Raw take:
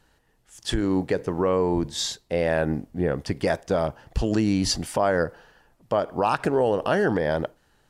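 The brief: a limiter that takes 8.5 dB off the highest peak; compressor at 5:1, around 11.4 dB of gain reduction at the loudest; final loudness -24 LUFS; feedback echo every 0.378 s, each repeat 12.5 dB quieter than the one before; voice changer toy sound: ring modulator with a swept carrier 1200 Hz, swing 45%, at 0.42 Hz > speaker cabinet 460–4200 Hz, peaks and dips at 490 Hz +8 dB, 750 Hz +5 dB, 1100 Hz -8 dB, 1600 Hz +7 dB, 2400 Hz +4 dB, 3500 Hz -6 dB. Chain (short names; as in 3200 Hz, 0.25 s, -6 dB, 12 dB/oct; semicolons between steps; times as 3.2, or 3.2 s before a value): compressor 5:1, threshold -31 dBFS; limiter -26 dBFS; feedback echo 0.378 s, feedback 24%, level -12.5 dB; ring modulator with a swept carrier 1200 Hz, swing 45%, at 0.42 Hz; speaker cabinet 460–4200 Hz, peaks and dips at 490 Hz +8 dB, 750 Hz +5 dB, 1100 Hz -8 dB, 1600 Hz +7 dB, 2400 Hz +4 dB, 3500 Hz -6 dB; gain +13 dB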